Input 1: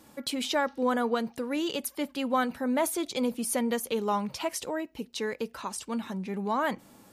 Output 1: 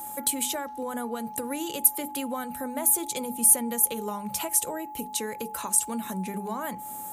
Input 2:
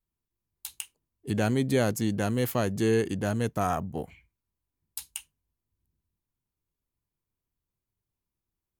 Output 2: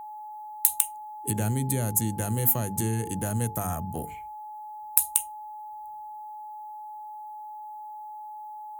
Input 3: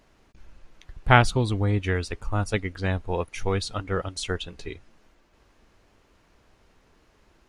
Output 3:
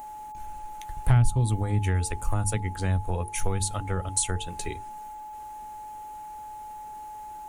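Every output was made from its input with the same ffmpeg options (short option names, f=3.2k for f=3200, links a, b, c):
-filter_complex "[0:a]acrossover=split=160[a][b];[b]acompressor=threshold=-36dB:ratio=6[c];[a][c]amix=inputs=2:normalize=0,bandreject=f=50:t=h:w=6,bandreject=f=100:t=h:w=6,bandreject=f=150:t=h:w=6,bandreject=f=200:t=h:w=6,bandreject=f=250:t=h:w=6,bandreject=f=300:t=h:w=6,bandreject=f=350:t=h:w=6,bandreject=f=400:t=h:w=6,bandreject=f=450:t=h:w=6,aexciter=amount=10.2:drive=2.3:freq=7.1k,acontrast=85,aeval=exprs='val(0)+0.0178*sin(2*PI*850*n/s)':c=same,volume=-2.5dB"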